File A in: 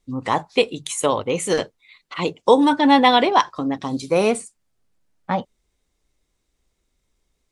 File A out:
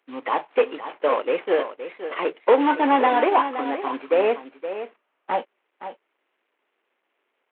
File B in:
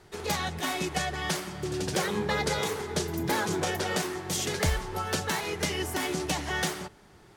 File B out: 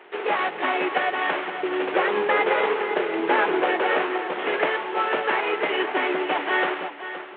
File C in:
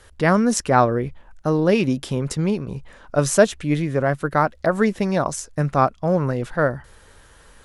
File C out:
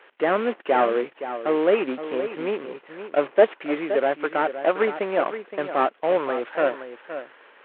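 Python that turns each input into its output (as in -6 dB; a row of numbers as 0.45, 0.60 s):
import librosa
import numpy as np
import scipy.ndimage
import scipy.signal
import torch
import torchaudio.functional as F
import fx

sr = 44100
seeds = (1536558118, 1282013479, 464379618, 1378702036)

p1 = fx.cvsd(x, sr, bps=16000)
p2 = scipy.signal.sosfilt(scipy.signal.butter(4, 340.0, 'highpass', fs=sr, output='sos'), p1)
p3 = p2 + fx.echo_single(p2, sr, ms=519, db=-11.0, dry=0)
y = p3 * 10.0 ** (-24 / 20.0) / np.sqrt(np.mean(np.square(p3)))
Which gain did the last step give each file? +1.5, +10.0, +1.5 dB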